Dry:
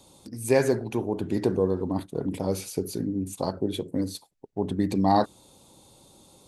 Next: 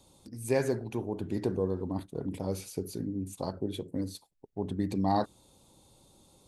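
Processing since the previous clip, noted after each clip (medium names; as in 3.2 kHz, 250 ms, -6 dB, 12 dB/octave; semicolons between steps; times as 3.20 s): bass shelf 83 Hz +9 dB; trim -7 dB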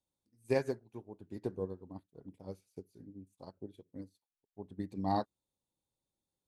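upward expansion 2.5:1, over -43 dBFS; trim -2 dB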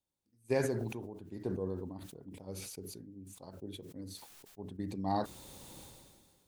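decay stretcher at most 32 dB/s; trim -1 dB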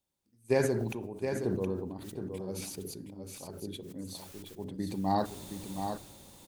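delay 719 ms -7 dB; on a send at -17 dB: reverberation RT60 1.0 s, pre-delay 5 ms; on the sum: trim +4 dB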